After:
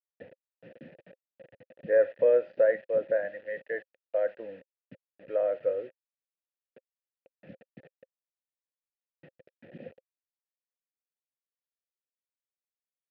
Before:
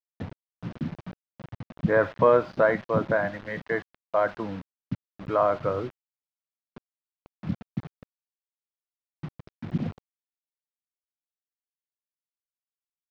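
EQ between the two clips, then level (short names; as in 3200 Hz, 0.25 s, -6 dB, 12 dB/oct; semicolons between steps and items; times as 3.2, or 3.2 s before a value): vowel filter e; air absorption 89 m; +3.5 dB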